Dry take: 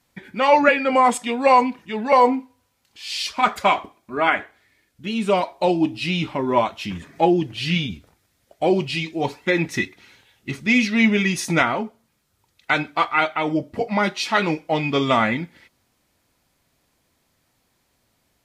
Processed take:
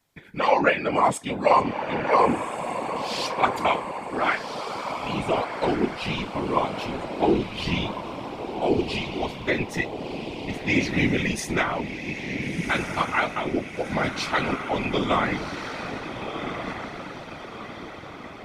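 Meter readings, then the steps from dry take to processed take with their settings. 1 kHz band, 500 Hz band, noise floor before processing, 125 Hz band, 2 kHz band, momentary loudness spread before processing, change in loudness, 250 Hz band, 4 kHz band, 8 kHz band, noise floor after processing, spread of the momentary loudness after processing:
-4.0 dB, -3.5 dB, -68 dBFS, -2.5 dB, -4.0 dB, 12 LU, -5.0 dB, -4.5 dB, -4.0 dB, -3.5 dB, -39 dBFS, 12 LU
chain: diffused feedback echo 1.425 s, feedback 50%, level -7 dB; whisperiser; gain -5 dB

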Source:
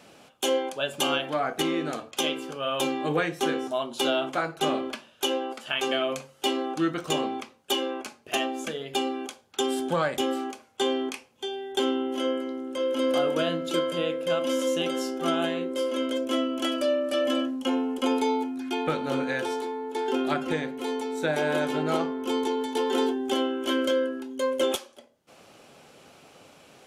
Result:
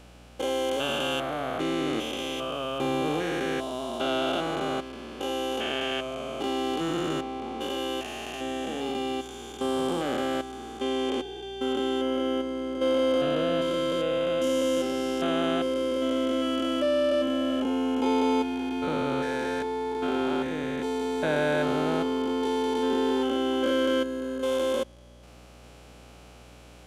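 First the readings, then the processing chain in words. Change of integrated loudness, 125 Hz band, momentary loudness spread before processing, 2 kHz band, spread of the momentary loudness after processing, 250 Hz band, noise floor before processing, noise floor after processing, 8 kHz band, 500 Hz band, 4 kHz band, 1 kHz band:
0.0 dB, +0.5 dB, 6 LU, -1.5 dB, 8 LU, +1.0 dB, -56 dBFS, -49 dBFS, -5.0 dB, 0.0 dB, -2.5 dB, -0.5 dB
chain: stepped spectrum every 0.4 s; hum 60 Hz, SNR 24 dB; gain +2 dB

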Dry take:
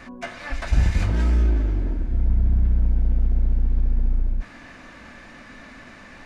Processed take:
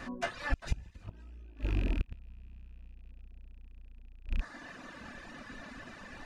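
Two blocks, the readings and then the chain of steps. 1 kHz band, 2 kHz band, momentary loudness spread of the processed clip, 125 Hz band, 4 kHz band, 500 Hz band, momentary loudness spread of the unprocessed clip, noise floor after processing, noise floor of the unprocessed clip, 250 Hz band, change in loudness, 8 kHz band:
-6.0 dB, -6.0 dB, 20 LU, -18.0 dB, -6.5 dB, -8.0 dB, 21 LU, -53 dBFS, -44 dBFS, -12.0 dB, -16.5 dB, n/a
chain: rattling part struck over -26 dBFS, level -25 dBFS; reverb removal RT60 1.1 s; notch 2200 Hz, Q 7.8; flipped gate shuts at -17 dBFS, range -28 dB; gain -1 dB

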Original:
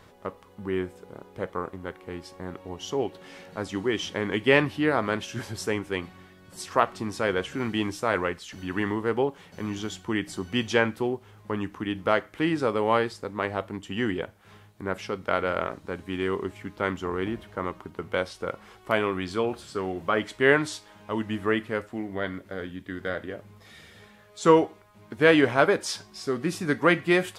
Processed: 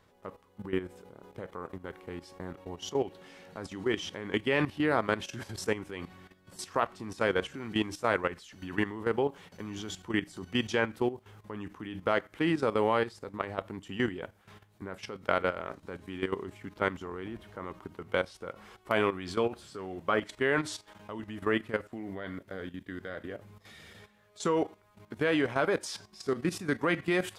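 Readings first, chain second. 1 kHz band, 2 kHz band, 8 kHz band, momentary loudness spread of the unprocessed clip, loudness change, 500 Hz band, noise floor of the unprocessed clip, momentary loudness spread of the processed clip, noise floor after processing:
-5.5 dB, -6.0 dB, -4.5 dB, 16 LU, -5.5 dB, -5.5 dB, -54 dBFS, 16 LU, -65 dBFS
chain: level quantiser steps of 13 dB

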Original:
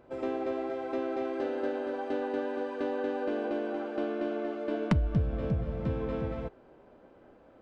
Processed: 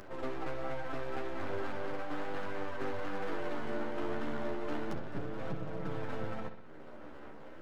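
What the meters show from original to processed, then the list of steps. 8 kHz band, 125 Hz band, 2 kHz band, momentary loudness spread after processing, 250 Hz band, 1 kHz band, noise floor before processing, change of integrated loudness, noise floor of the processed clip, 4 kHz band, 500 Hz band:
n/a, -10.5 dB, 0.0 dB, 12 LU, -7.5 dB, -2.5 dB, -57 dBFS, -7.0 dB, -47 dBFS, -0.5 dB, -7.0 dB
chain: one-sided fold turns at -27 dBFS; Chebyshev high-pass 180 Hz, order 2; bell 1400 Hz +8 dB 0.47 oct; limiter -25.5 dBFS, peak gain reduction 9 dB; upward compressor, threshold -38 dBFS; resonator 300 Hz, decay 0.69 s; half-wave rectifier; chorus voices 2, 0.35 Hz, delay 10 ms, depth 3.9 ms; on a send: analogue delay 63 ms, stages 2048, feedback 55%, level -10.5 dB; on the sum: gain +10.5 dB

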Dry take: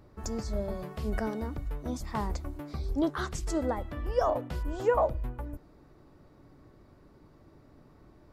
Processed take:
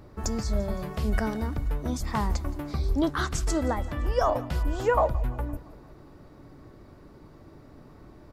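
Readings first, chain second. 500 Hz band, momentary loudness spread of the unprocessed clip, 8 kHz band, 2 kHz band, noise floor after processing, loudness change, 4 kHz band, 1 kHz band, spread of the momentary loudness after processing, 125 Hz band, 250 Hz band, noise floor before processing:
+2.0 dB, 10 LU, +7.0 dB, +6.0 dB, -51 dBFS, +4.0 dB, +7.0 dB, +4.5 dB, 7 LU, +7.0 dB, +4.0 dB, -58 dBFS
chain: dynamic EQ 460 Hz, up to -6 dB, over -42 dBFS, Q 0.73; feedback echo 0.171 s, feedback 57%, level -20 dB; gain +7 dB

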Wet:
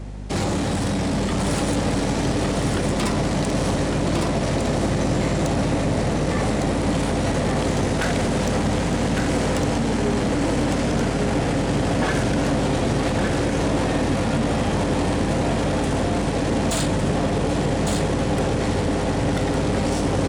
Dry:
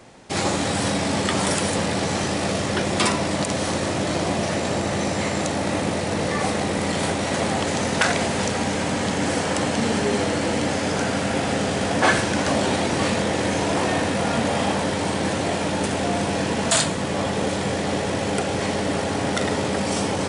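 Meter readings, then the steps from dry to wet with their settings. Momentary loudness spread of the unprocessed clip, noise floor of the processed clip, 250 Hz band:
3 LU, -23 dBFS, +2.5 dB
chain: low shelf 390 Hz +11 dB; limiter -10.5 dBFS, peak gain reduction 7.5 dB; soft clip -18 dBFS, distortion -13 dB; hum 50 Hz, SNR 11 dB; echo 1.157 s -4 dB

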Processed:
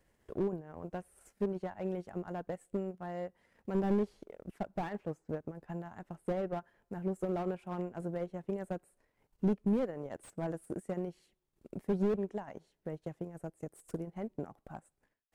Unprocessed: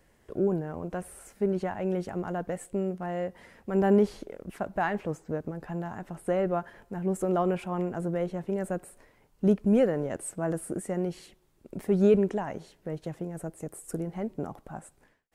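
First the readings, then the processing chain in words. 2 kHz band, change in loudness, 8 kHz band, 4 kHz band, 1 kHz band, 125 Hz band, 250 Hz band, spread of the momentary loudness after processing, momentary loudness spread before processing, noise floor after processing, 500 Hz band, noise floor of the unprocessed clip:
-11.0 dB, -8.0 dB, under -15 dB, n/a, -8.5 dB, -7.5 dB, -7.5 dB, 13 LU, 15 LU, -82 dBFS, -9.0 dB, -65 dBFS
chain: transient shaper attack +5 dB, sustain -10 dB; slew limiter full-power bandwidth 42 Hz; gain -8.5 dB

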